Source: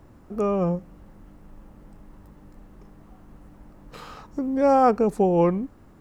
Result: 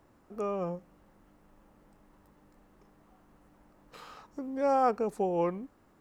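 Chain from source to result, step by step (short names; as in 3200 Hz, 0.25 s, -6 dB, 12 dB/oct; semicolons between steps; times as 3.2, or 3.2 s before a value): low shelf 230 Hz -12 dB; gain -6.5 dB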